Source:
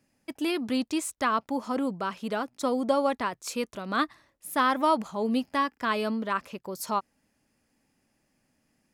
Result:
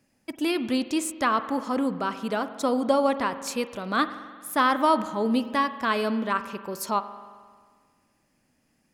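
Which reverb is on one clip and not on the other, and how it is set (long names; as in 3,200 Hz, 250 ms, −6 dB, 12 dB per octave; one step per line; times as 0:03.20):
spring reverb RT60 1.7 s, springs 44 ms, chirp 60 ms, DRR 11.5 dB
level +2.5 dB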